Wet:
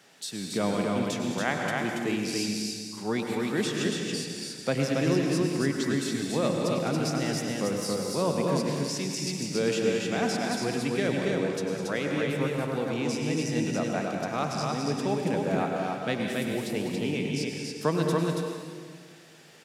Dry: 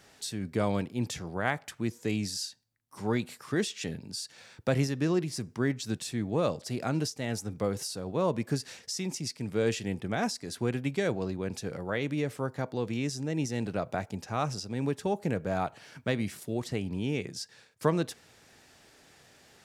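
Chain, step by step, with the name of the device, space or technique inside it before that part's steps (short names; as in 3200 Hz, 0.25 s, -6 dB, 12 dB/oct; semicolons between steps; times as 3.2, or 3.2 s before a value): stadium PA (HPF 140 Hz 24 dB/oct; bell 2900 Hz +3 dB; loudspeakers at several distances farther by 70 m -11 dB, 96 m -3 dB; reverb RT60 1.8 s, pre-delay 91 ms, DRR 3 dB)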